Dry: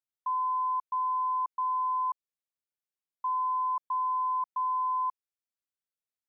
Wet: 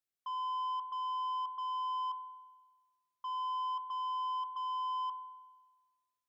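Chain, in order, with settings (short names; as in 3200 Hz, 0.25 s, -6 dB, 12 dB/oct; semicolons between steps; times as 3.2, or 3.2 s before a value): notch 950 Hz, Q 5.3; soft clip -36 dBFS, distortion -15 dB; reverb RT60 1.3 s, pre-delay 31 ms, DRR 13.5 dB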